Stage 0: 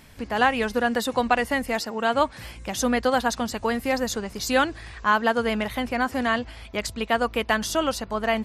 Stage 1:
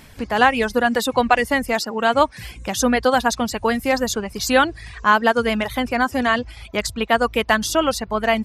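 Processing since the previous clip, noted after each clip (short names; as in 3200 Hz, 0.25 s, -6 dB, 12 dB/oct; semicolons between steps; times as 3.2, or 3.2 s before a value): reverb removal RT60 0.56 s; gain +5.5 dB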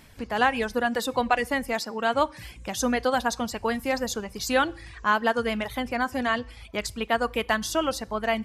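reverb RT60 0.55 s, pre-delay 3 ms, DRR 19.5 dB; gain -7 dB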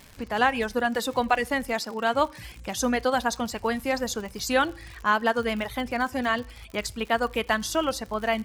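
crackle 110/s -34 dBFS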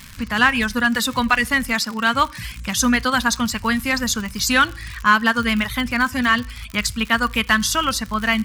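band shelf 510 Hz -14 dB; in parallel at -7 dB: hard clip -22.5 dBFS, distortion -12 dB; on the sum: gain +7.5 dB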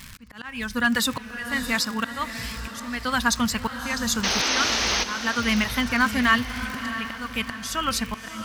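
auto swell 0.503 s; painted sound noise, 4.23–5.04, 220–6500 Hz -22 dBFS; diffused feedback echo 0.645 s, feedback 45%, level -10 dB; gain -2 dB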